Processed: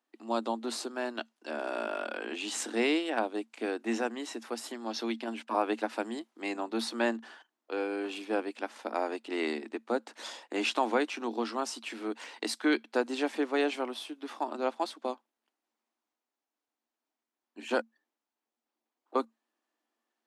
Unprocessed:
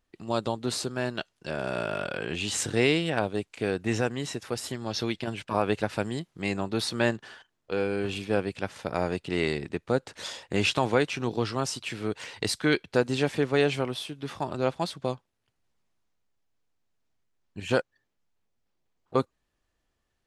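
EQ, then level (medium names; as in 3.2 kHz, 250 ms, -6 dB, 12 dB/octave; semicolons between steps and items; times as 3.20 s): rippled Chebyshev high-pass 220 Hz, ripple 6 dB; 0.0 dB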